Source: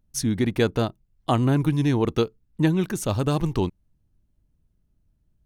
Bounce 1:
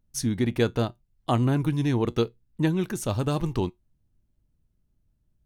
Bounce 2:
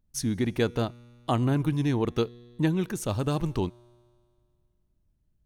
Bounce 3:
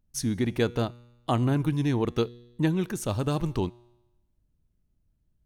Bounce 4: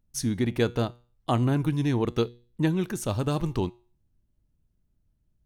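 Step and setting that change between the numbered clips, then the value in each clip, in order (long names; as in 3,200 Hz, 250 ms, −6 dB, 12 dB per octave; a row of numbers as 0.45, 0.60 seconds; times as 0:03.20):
tuned comb filter, decay: 0.16, 2.1, 1, 0.4 seconds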